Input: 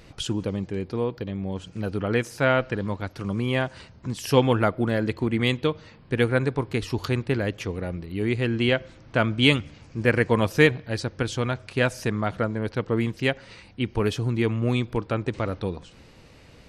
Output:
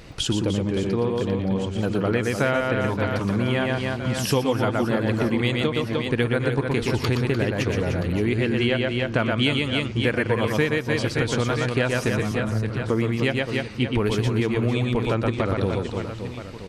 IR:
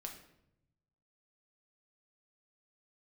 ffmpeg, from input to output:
-filter_complex "[0:a]asettb=1/sr,asplit=3[link_01][link_02][link_03];[link_01]atrim=end=12.194[link_04];[link_02]atrim=start=12.19:end=12.82,asetpts=PTS-STARTPTS,afade=type=in:duration=0.004:curve=qsin,afade=type=out:start_time=0.626:duration=0.004:curve=qsin,acrossover=split=140[link_05][link_06];[link_06]acompressor=threshold=-36dB:ratio=6[link_07];[link_05][link_07]amix=inputs=2:normalize=0[link_08];[link_03]atrim=start=12.816[link_09];[link_04][link_08]acrossfade=duration=0.004:curve1=hsin:curve2=qsin[link_10];[link_10][link_09]acrossfade=duration=0.004:curve1=qsin:curve2=hsin,aecho=1:1:120|300|570|975|1582:0.631|0.398|0.251|0.158|0.1,acompressor=threshold=-24dB:ratio=6,volume=5.5dB"

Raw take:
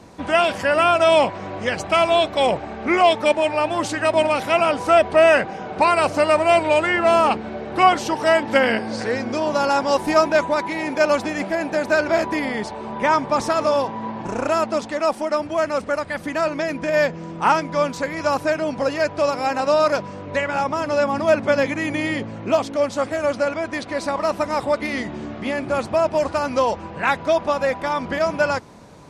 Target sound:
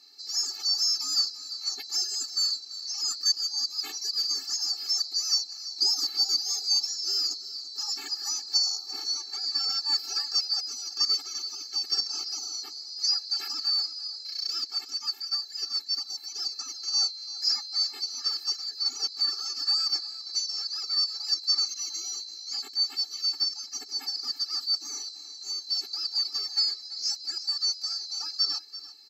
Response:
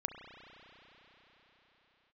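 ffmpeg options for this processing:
-af "afftfilt=real='real(if(lt(b,736),b+184*(1-2*mod(floor(b/184),2)),b),0)':imag='imag(if(lt(b,736),b+184*(1-2*mod(floor(b/184),2)),b),0)':win_size=2048:overlap=0.75,aecho=1:1:339:0.178,afftfilt=real='re*eq(mod(floor(b*sr/1024/230),2),1)':imag='im*eq(mod(floor(b*sr/1024/230),2),1)':win_size=1024:overlap=0.75,volume=-6.5dB"

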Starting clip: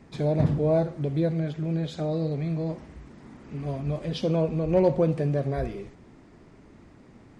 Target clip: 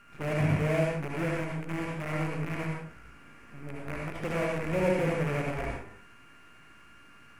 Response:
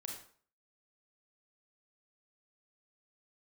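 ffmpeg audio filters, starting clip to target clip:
-filter_complex "[0:a]aeval=exprs='val(0)+0.00631*sin(2*PI*1400*n/s)':channel_layout=same,acrusher=bits=5:dc=4:mix=0:aa=0.000001,highshelf=frequency=3000:width_type=q:width=3:gain=-7.5[link_01];[1:a]atrim=start_sample=2205,atrim=end_sample=4410,asetrate=23373,aresample=44100[link_02];[link_01][link_02]afir=irnorm=-1:irlink=0,volume=-7dB"

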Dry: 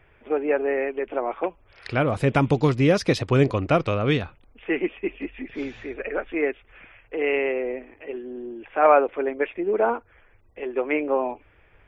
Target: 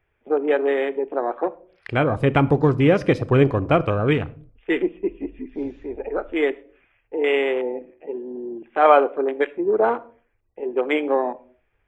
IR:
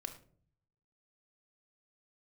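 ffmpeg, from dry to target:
-filter_complex "[0:a]afwtdn=0.0282,asplit=2[link_01][link_02];[1:a]atrim=start_sample=2205,afade=type=out:start_time=0.38:duration=0.01,atrim=end_sample=17199,highshelf=frequency=6200:gain=10[link_03];[link_02][link_03]afir=irnorm=-1:irlink=0,volume=-5dB[link_04];[link_01][link_04]amix=inputs=2:normalize=0"

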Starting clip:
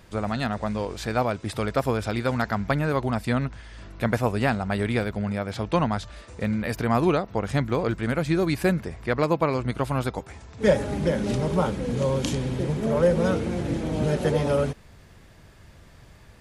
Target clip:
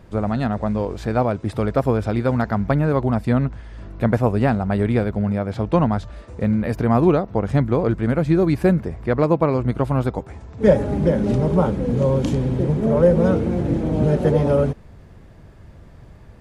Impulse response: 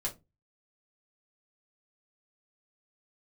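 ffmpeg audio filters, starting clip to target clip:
-af "tiltshelf=frequency=1400:gain=7"

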